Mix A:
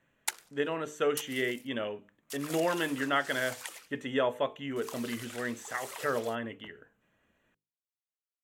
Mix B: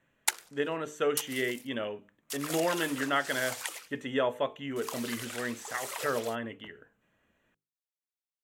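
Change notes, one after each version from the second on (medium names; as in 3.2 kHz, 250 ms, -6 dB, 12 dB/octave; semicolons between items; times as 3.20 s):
background +5.0 dB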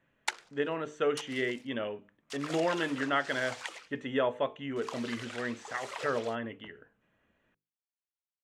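master: add distance through air 110 m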